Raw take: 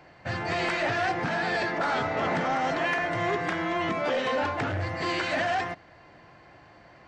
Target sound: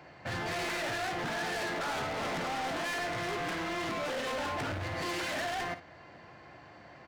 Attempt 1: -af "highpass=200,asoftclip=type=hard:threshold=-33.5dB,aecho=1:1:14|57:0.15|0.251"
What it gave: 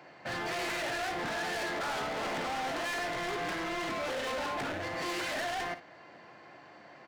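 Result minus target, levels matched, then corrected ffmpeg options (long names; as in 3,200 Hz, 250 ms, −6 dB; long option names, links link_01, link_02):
125 Hz band −6.0 dB
-af "highpass=64,asoftclip=type=hard:threshold=-33.5dB,aecho=1:1:14|57:0.15|0.251"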